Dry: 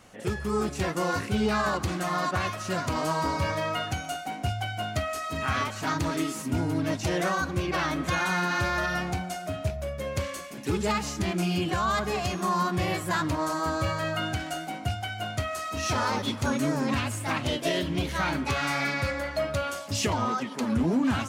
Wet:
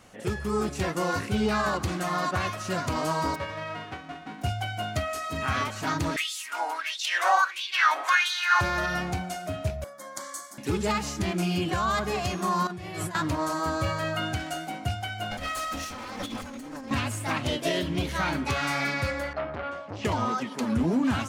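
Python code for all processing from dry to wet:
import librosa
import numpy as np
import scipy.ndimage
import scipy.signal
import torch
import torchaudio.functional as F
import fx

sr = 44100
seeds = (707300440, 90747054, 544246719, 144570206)

y = fx.envelope_flatten(x, sr, power=0.1, at=(3.34, 4.41), fade=0.02)
y = fx.lowpass(y, sr, hz=1500.0, slope=12, at=(3.34, 4.41), fade=0.02)
y = fx.peak_eq(y, sr, hz=410.0, db=4.0, octaves=0.29, at=(3.34, 4.41), fade=0.02)
y = fx.chain(y, sr, fx.highpass(hz=330.0, slope=24),
    fx.filter_lfo_highpass(shape='sine', hz=1.5, low_hz=770.0, high_hz=3700.0, q=5.2), at=(6.16, 8.61))
y = fx.chain(y, sr, fx.highpass(hz=290.0, slope=24),
    fx.dynamic_eq(hz=7600.0, q=1.2, threshold_db=-55.0, ratio=4.0, max_db=7),
    fx.fixed_phaser(hz=1100.0, stages=4), at=(9.84, 10.58))
y = fx.chain(y, sr, fx.over_compress(threshold_db=-35.0, ratio=-1.0),
    fx.brickwall_lowpass(high_hz=13000.0),
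    fx.notch_comb(f0_hz=270.0), at=(12.67, 13.15))
y = fx.chain(y, sr, fx.lower_of_two(delay_ms=3.8),
    fx.over_compress(threshold_db=-36.0, ratio=-1.0), at=(15.31, 16.91))
y = fx.chain(y, sr, fx.lowpass(hz=2000.0, slope=12),
    fx.transformer_sat(knee_hz=1100.0), at=(19.33, 20.05))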